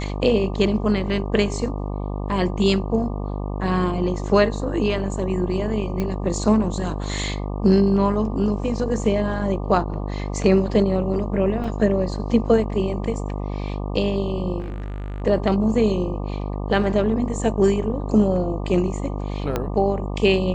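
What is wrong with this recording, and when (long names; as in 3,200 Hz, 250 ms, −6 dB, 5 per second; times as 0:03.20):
mains buzz 50 Hz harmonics 24 −27 dBFS
0:06.00: click −13 dBFS
0:11.64: drop-out 4 ms
0:14.59–0:15.22: clipping −26.5 dBFS
0:19.56: click −9 dBFS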